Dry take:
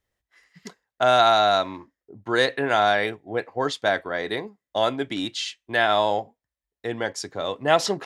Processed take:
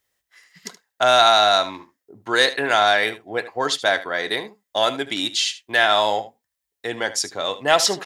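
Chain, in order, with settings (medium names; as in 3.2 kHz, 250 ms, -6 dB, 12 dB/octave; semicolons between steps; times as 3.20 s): tilt EQ +2.5 dB/octave; in parallel at -6 dB: saturation -13.5 dBFS, distortion -13 dB; on the sum: delay 75 ms -15.5 dB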